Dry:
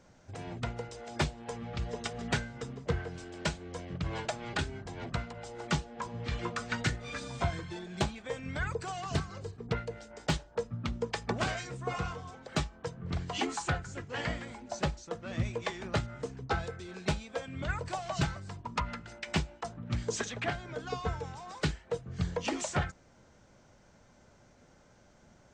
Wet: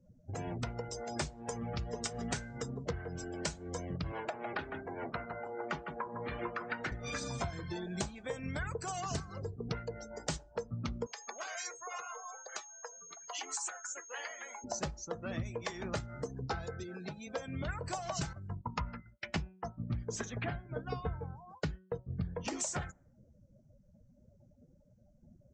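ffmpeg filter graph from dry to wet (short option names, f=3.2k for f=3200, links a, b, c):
-filter_complex "[0:a]asettb=1/sr,asplit=3[a][b][c];[a]atrim=end=4.124[d];[b]atrim=start=4.12:end=6.92,asetpts=PTS-STARTPTS,afade=t=in:d=0.004:c=qsin,afade=t=out:st=2.796:d=0.004:c=qsin,acrossover=split=250 2700:gain=0.2 1 0.178[e][f][g];[e][f][g]amix=inputs=3:normalize=0,aecho=1:1:155:0.299,atrim=end_sample=123480[h];[c]atrim=start=6.916[i];[d][h]acrossfade=d=0.004:c1=hsin:c2=qsin[j];[j][i]acrossfade=d=0.004:c1=qsin:c2=hsin,asettb=1/sr,asplit=3[k][l][m];[k]atrim=end=11.064[n];[l]atrim=start=11.06:end=14.64,asetpts=PTS-STARTPTS,afade=t=in:d=0.004:c=qsin,afade=t=out:st=3.576:d=0.004:c=qsin,acompressor=threshold=-39dB:ratio=5:attack=3.2:release=140:knee=1:detection=peak,aeval=exprs='val(0)+0.000794*sin(2*PI*6500*n/s)':c=same,highpass=700[o];[m]atrim=start=14.636[p];[n][o]acrossfade=d=0.004:c1=hsin:c2=qsin[q];[q][p]acrossfade=d=0.004:c1=qsin:c2=hsin,asettb=1/sr,asplit=3[r][s][t];[r]atrim=end=16.834[u];[s]atrim=start=16.83:end=17.27,asetpts=PTS-STARTPTS,afade=t=in:d=0.004:c=qsin,afade=t=out:st=0.436:d=0.004:c=qsin,highpass=f=110:w=0.5412,highpass=f=110:w=1.3066,acompressor=threshold=-44dB:ratio=4:attack=3.2:release=140:knee=1:detection=peak[v];[t]atrim=start=17.266[w];[u][v]acrossfade=d=0.004:c1=hsin:c2=qsin[x];[x][w]acrossfade=d=0.004:c1=qsin:c2=hsin,asettb=1/sr,asplit=3[y][z][aa];[y]atrim=end=18.334[ab];[z]atrim=start=18.33:end=22.48,asetpts=PTS-STARTPTS,afade=t=in:d=0.004:c=qsin,afade=t=out:st=4.146:d=0.004:c=qsin,agate=range=-33dB:threshold=-38dB:ratio=3:release=100:detection=peak,bass=f=250:g=7,treble=f=4k:g=-8,bandreject=f=186.8:t=h:w=4,bandreject=f=373.6:t=h:w=4,bandreject=f=560.4:t=h:w=4,bandreject=f=747.2:t=h:w=4,bandreject=f=934:t=h:w=4,bandreject=f=1.1208k:t=h:w=4,bandreject=f=1.3076k:t=h:w=4,bandreject=f=1.4944k:t=h:w=4,bandreject=f=1.6812k:t=h:w=4,bandreject=f=1.868k:t=h:w=4,bandreject=f=2.0548k:t=h:w=4,bandreject=f=2.2416k:t=h:w=4,bandreject=f=2.4284k:t=h:w=4,bandreject=f=2.6152k:t=h:w=4,bandreject=f=2.802k:t=h:w=4,bandreject=f=2.9888k:t=h:w=4,bandreject=f=3.1756k:t=h:w=4,bandreject=f=3.3624k:t=h:w=4[ac];[aa]atrim=start=22.476[ad];[ab][ac]acrossfade=d=0.004:c1=hsin:c2=qsin[ae];[ae][ad]acrossfade=d=0.004:c1=qsin:c2=hsin,afftdn=nr=34:nf=-51,highshelf=f=4.6k:t=q:w=1.5:g=7.5,acompressor=threshold=-39dB:ratio=5,volume=4dB"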